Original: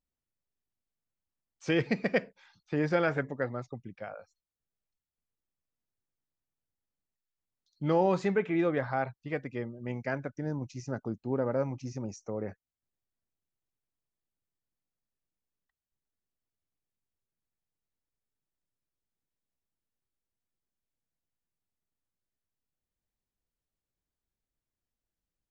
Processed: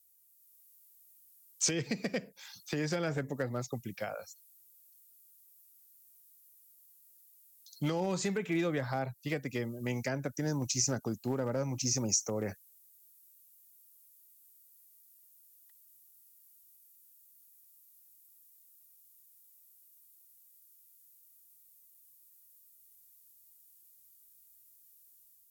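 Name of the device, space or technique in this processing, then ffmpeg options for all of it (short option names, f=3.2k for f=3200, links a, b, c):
FM broadcast chain: -filter_complex "[0:a]highpass=44,dynaudnorm=f=170:g=5:m=5dB,acrossover=split=220|750[a][b][c];[a]acompressor=threshold=-32dB:ratio=4[d];[b]acompressor=threshold=-31dB:ratio=4[e];[c]acompressor=threshold=-42dB:ratio=4[f];[d][e][f]amix=inputs=3:normalize=0,aemphasis=mode=production:type=75fm,alimiter=limit=-22.5dB:level=0:latency=1:release=256,asoftclip=type=hard:threshold=-24dB,lowpass=f=15k:w=0.5412,lowpass=f=15k:w=1.3066,aemphasis=mode=production:type=75fm"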